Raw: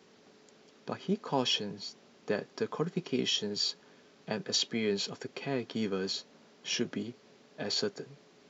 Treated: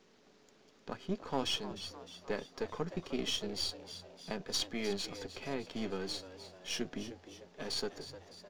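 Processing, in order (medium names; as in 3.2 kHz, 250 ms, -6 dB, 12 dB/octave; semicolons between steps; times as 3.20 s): partial rectifier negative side -7 dB; frequency-shifting echo 305 ms, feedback 54%, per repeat +88 Hz, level -13 dB; trim -2.5 dB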